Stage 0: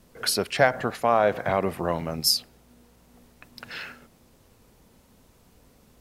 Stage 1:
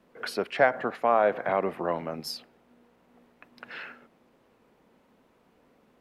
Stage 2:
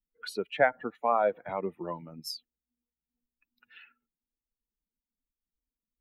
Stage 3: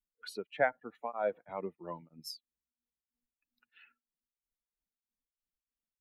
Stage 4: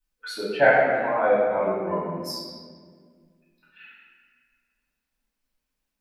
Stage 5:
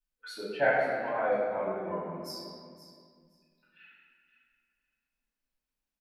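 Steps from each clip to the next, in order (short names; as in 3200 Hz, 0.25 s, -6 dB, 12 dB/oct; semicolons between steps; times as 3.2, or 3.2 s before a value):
three-band isolator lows -18 dB, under 190 Hz, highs -17 dB, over 3000 Hz; gain -1.5 dB
per-bin expansion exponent 2
beating tremolo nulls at 3.1 Hz; gain -5 dB
reverb RT60 1.8 s, pre-delay 3 ms, DRR -10.5 dB; gain +1 dB
feedback echo 0.52 s, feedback 16%, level -14 dB; gain -8.5 dB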